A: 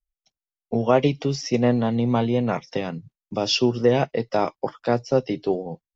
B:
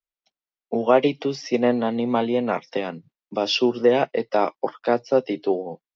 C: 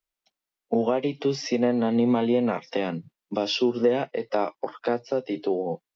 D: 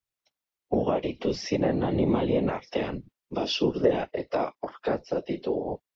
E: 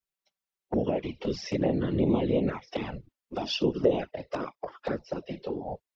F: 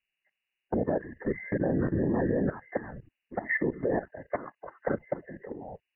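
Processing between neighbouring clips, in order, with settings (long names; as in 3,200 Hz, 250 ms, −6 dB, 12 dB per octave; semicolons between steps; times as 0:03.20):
three-way crossover with the lows and the highs turned down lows −21 dB, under 210 Hz, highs −23 dB, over 5,100 Hz; level +2 dB
downward compressor 6 to 1, threshold −25 dBFS, peak gain reduction 14.5 dB; harmonic and percussive parts rebalanced harmonic +8 dB
random phases in short frames; level −2.5 dB
flanger swept by the level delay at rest 5.2 ms, full sweep at −19.5 dBFS
hearing-aid frequency compression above 1,500 Hz 4 to 1; output level in coarse steps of 15 dB; level +3.5 dB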